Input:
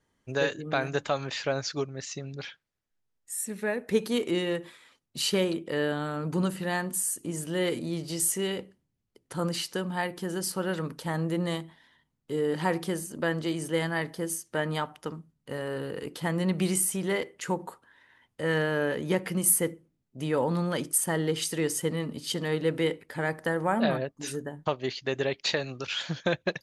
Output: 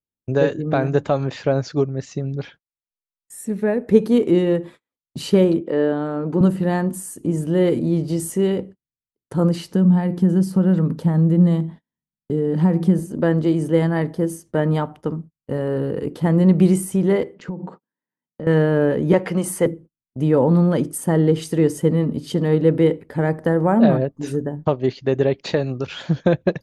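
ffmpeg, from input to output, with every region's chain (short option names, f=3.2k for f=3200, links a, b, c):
-filter_complex "[0:a]asettb=1/sr,asplit=3[a][b][c];[a]atrim=end=5.604[d];[b]atrim=start=5.6:end=6.41,asetpts=PTS-STARTPTS,afade=t=in:d=0.004:c=qsin,afade=t=out:st=0.806:d=0.004:c=qsin,highpass=250,aemphasis=mode=reproduction:type=50kf[e];[c]atrim=start=6.406[f];[d][e]acrossfade=d=0.004:c1=hsin:c2=qsin[g];[g][f]acrossfade=d=0.004:c1=qsin:c2=hsin,asettb=1/sr,asplit=3[h][i][j];[h]atrim=end=9.714[k];[i]atrim=start=9.71:end=12.99,asetpts=PTS-STARTPTS,afade=t=in:d=0.004:c=qsin,afade=t=out:st=3.276:d=0.004:c=qsin,acompressor=threshold=-34dB:ratio=2:attack=3.2:release=140:knee=1:detection=peak,equalizer=f=190:t=o:w=0.6:g=11[l];[j]atrim=start=12.986[m];[k][l]acrossfade=d=0.004:c1=hsin:c2=qsin[n];[n][m]acrossfade=d=0.004:c1=qsin:c2=hsin,asettb=1/sr,asplit=3[o][p][q];[o]atrim=end=17.344[r];[p]atrim=start=17.34:end=18.47,asetpts=PTS-STARTPTS,afade=t=in:d=0.004:c=qsin,afade=t=out:st=1.126:d=0.004:c=qsin,lowpass=f=5.6k:w=0.5412,lowpass=f=5.6k:w=1.3066,lowshelf=f=120:t=q:w=3:g=-13,acompressor=threshold=-37dB:ratio=10:attack=3.2:release=140:knee=1:detection=peak[s];[q]atrim=start=18.466[t];[r][s]acrossfade=d=0.004:c1=hsin:c2=qsin[u];[u][t]acrossfade=d=0.004:c1=qsin:c2=hsin,asettb=1/sr,asplit=3[v][w][x];[v]atrim=end=19.134[y];[w]atrim=start=19.13:end=19.66,asetpts=PTS-STARTPTS,afade=t=in:d=0.004:c=qsin,afade=t=out:st=0.526:d=0.004:c=qsin,acontrast=49,acrossover=split=500 8000:gain=0.251 1 0.178[z][aa][ab];[z][aa][ab]amix=inputs=3:normalize=0[ac];[x]atrim=start=19.656[ad];[y][ac]acrossfade=d=0.004:c1=hsin:c2=qsin[ae];[ae][ad]acrossfade=d=0.004:c1=qsin:c2=hsin,agate=range=-35dB:threshold=-48dB:ratio=16:detection=peak,tiltshelf=f=970:g=9.5,volume=5dB"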